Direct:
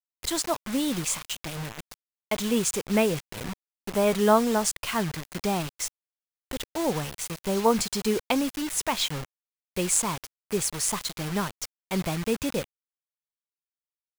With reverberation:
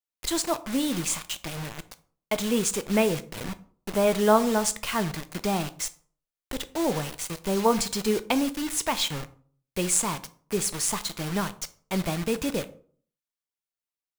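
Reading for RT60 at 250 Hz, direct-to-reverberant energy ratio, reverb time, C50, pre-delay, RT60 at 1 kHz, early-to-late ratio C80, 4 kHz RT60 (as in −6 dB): 0.50 s, 11.5 dB, 0.50 s, 17.5 dB, 3 ms, 0.45 s, 21.5 dB, 0.30 s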